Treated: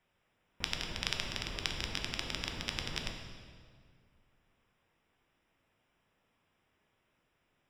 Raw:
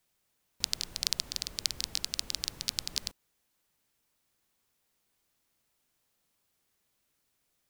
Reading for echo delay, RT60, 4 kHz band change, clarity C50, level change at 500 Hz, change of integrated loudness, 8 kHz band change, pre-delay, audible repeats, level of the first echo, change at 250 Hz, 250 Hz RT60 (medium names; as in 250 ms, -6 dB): no echo, 1.9 s, -4.5 dB, 5.0 dB, +7.5 dB, -4.0 dB, -11.0 dB, 7 ms, no echo, no echo, +7.5 dB, 2.3 s